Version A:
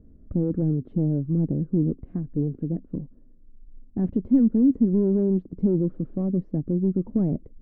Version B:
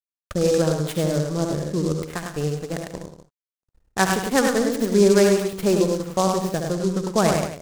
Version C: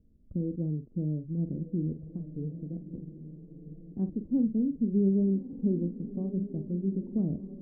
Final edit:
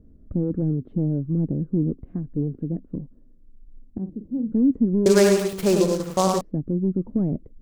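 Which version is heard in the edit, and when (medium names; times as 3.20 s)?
A
3.98–4.52 s: from C
5.06–6.41 s: from B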